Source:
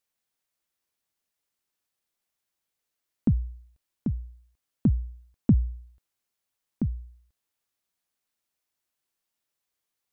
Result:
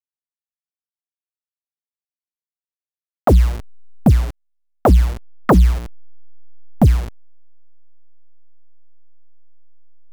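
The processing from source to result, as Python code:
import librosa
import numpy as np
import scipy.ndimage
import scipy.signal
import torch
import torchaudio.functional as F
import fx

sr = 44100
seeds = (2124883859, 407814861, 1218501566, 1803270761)

y = fx.delta_hold(x, sr, step_db=-42.5)
y = fx.fold_sine(y, sr, drive_db=12, ceiling_db=-10.5)
y = y * librosa.db_to_amplitude(4.5)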